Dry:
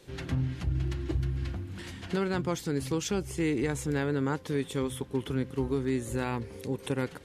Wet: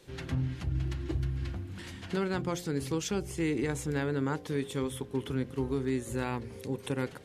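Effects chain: de-hum 58.83 Hz, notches 13; trim -1.5 dB

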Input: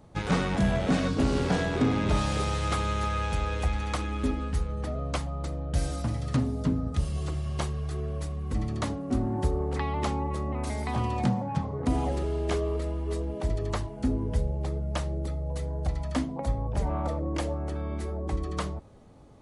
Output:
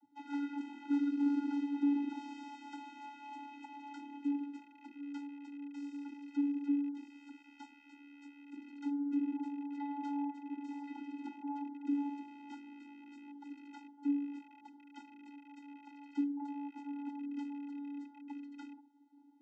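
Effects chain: rattle on loud lows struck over -29 dBFS, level -26 dBFS; vocoder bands 32, square 285 Hz; trim -8 dB

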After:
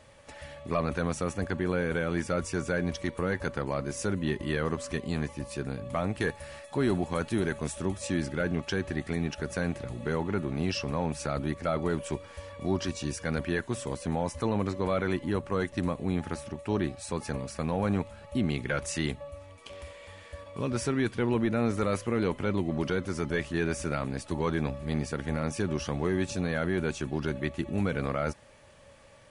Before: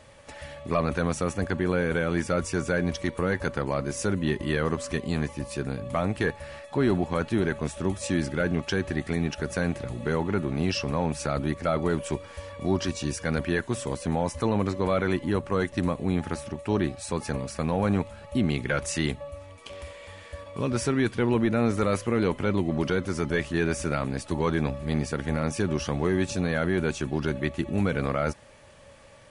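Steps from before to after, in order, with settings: 6.20–7.85 s: treble shelf 7.4 kHz +12 dB; trim -3.5 dB

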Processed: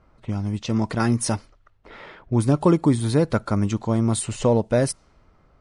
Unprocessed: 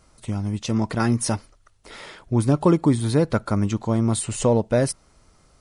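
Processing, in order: level-controlled noise filter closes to 1.9 kHz, open at -18 dBFS

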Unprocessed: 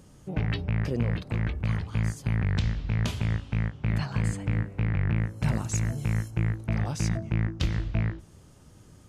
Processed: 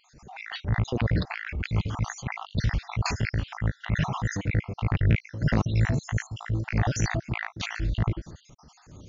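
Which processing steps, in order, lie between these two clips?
random holes in the spectrogram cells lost 55%; transient shaper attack -8 dB, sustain +4 dB; trim +8 dB; MP3 80 kbps 16 kHz

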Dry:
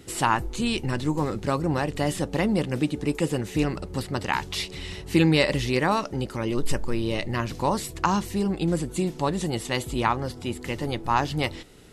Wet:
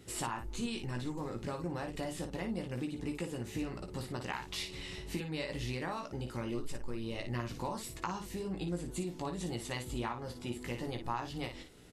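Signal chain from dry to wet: compression, threshold -27 dBFS, peak gain reduction 12 dB; on a send: early reflections 17 ms -5.5 dB, 57 ms -7.5 dB; on the sum: trim -8.5 dB

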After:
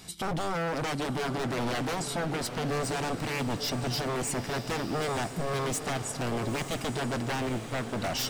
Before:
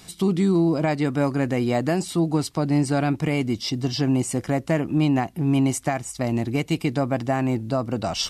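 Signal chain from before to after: 7.49–7.93 s: expander -19 dBFS; wavefolder -24 dBFS; echo that smears into a reverb 929 ms, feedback 56%, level -9.5 dB; trim -2 dB

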